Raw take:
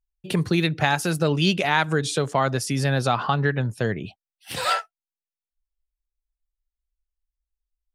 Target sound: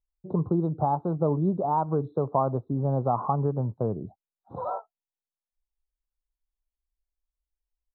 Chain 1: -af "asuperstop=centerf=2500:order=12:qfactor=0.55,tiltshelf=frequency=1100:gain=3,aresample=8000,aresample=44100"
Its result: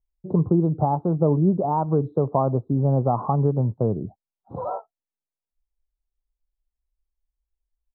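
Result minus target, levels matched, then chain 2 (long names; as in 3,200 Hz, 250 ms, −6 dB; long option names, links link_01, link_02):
1,000 Hz band −3.5 dB
-af "asuperstop=centerf=2500:order=12:qfactor=0.55,tiltshelf=frequency=1100:gain=-3.5,aresample=8000,aresample=44100"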